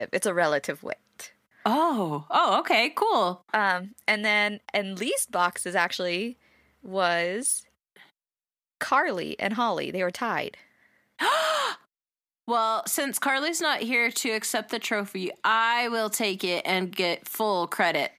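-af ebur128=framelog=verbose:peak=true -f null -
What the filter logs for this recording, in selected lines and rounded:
Integrated loudness:
  I:         -25.6 LUFS
  Threshold: -36.1 LUFS
Loudness range:
  LRA:         4.4 LU
  Threshold: -46.3 LUFS
  LRA low:   -28.7 LUFS
  LRA high:  -24.3 LUFS
True peak:
  Peak:       -8.4 dBFS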